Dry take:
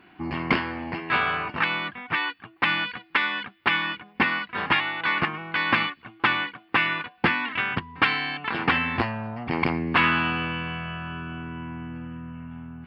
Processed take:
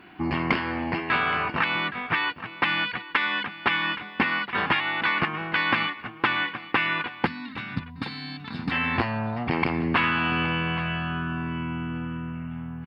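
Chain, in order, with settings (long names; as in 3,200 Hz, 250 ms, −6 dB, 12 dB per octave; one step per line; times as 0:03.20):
downward compressor 3 to 1, threshold −26 dBFS, peak gain reduction 8.5 dB
gain on a spectral selection 0:07.26–0:08.71, 300–3,500 Hz −15 dB
single-tap delay 821 ms −15.5 dB
level +4.5 dB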